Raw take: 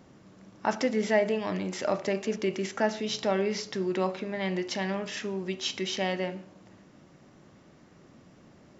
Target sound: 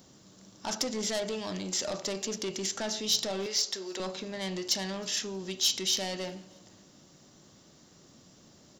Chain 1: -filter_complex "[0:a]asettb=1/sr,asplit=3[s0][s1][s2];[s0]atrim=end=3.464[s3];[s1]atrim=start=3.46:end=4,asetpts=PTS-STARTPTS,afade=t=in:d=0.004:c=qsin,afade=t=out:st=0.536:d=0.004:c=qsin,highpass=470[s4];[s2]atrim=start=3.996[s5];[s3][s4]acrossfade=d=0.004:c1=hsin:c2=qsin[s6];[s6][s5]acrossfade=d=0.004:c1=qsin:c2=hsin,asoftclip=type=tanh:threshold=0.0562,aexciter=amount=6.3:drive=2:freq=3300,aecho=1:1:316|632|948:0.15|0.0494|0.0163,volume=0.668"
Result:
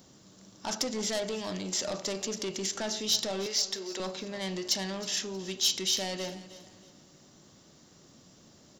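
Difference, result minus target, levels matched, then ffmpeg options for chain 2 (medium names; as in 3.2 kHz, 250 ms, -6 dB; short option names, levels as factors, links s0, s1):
echo-to-direct +10 dB
-filter_complex "[0:a]asettb=1/sr,asplit=3[s0][s1][s2];[s0]atrim=end=3.464[s3];[s1]atrim=start=3.46:end=4,asetpts=PTS-STARTPTS,afade=t=in:d=0.004:c=qsin,afade=t=out:st=0.536:d=0.004:c=qsin,highpass=470[s4];[s2]atrim=start=3.996[s5];[s3][s4]acrossfade=d=0.004:c1=hsin:c2=qsin[s6];[s6][s5]acrossfade=d=0.004:c1=qsin:c2=hsin,asoftclip=type=tanh:threshold=0.0562,aexciter=amount=6.3:drive=2:freq=3300,aecho=1:1:316|632:0.0473|0.0156,volume=0.668"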